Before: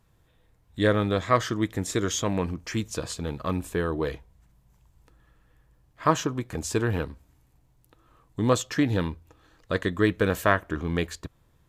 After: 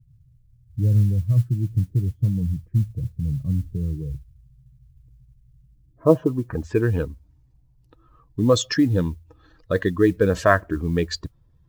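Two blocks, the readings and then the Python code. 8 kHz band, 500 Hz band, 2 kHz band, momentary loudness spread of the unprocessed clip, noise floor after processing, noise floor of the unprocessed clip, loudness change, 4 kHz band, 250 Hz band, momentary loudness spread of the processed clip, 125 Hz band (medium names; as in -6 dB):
-3.5 dB, +4.0 dB, +0.5 dB, 10 LU, -58 dBFS, -64 dBFS, +4.5 dB, +1.0 dB, +4.0 dB, 12 LU, +9.0 dB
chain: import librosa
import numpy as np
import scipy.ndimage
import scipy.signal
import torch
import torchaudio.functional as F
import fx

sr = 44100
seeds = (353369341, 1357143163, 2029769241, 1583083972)

y = fx.spec_expand(x, sr, power=1.7)
y = fx.filter_sweep_lowpass(y, sr, from_hz=130.0, to_hz=5200.0, start_s=5.51, end_s=7.14, q=2.9)
y = fx.mod_noise(y, sr, seeds[0], snr_db=34)
y = y * librosa.db_to_amplitude(5.0)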